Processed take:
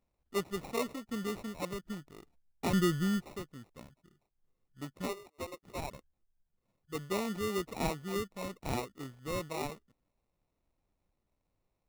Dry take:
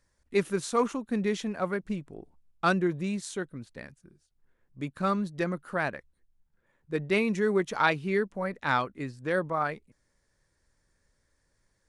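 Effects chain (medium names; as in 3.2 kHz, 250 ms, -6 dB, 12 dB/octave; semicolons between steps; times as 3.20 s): 2.73–3.26 s: tilt EQ -4 dB/octave; 5.06–5.91 s: Chebyshev high-pass 380 Hz, order 5; sample-rate reducer 1.6 kHz, jitter 0%; trim -8.5 dB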